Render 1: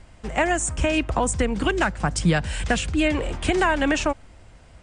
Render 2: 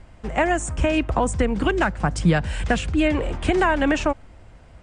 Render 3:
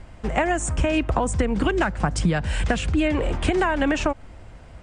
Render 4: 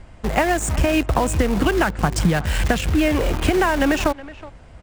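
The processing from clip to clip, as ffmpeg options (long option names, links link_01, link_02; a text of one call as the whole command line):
ffmpeg -i in.wav -af "highshelf=frequency=3000:gain=-8.5,volume=2dB" out.wav
ffmpeg -i in.wav -af "acompressor=threshold=-21dB:ratio=6,volume=3.5dB" out.wav
ffmpeg -i in.wav -filter_complex "[0:a]asplit=2[link_01][link_02];[link_02]acrusher=bits=3:mix=0:aa=0.000001,volume=-7.5dB[link_03];[link_01][link_03]amix=inputs=2:normalize=0,asplit=2[link_04][link_05];[link_05]adelay=370,highpass=300,lowpass=3400,asoftclip=type=hard:threshold=-12dB,volume=-17dB[link_06];[link_04][link_06]amix=inputs=2:normalize=0" out.wav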